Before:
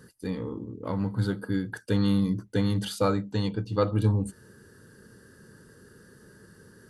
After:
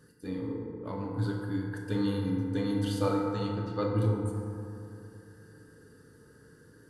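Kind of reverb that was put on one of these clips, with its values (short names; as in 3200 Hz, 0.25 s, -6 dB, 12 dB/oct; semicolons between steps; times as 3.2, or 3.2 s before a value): FDN reverb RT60 2.8 s, high-frequency decay 0.35×, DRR -1.5 dB; gain -8 dB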